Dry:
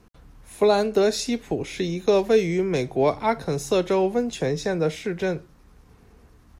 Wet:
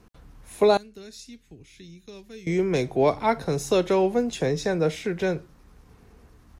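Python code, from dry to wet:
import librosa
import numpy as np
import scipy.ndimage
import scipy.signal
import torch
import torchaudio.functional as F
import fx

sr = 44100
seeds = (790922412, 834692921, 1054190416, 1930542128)

y = fx.tone_stack(x, sr, knobs='6-0-2', at=(0.77, 2.47))
y = fx.quant_float(y, sr, bits=8)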